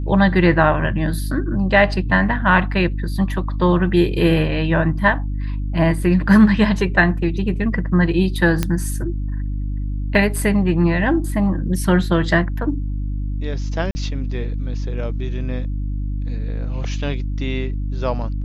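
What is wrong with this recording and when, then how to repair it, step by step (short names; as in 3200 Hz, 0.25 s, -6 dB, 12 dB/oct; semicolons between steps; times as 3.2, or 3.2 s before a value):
hum 50 Hz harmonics 6 -23 dBFS
8.63 pop -5 dBFS
13.91–13.95 gap 40 ms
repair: de-click; de-hum 50 Hz, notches 6; interpolate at 13.91, 40 ms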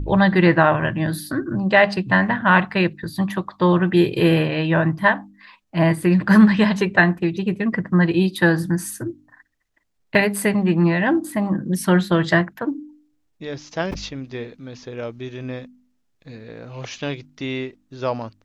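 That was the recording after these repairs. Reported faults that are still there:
none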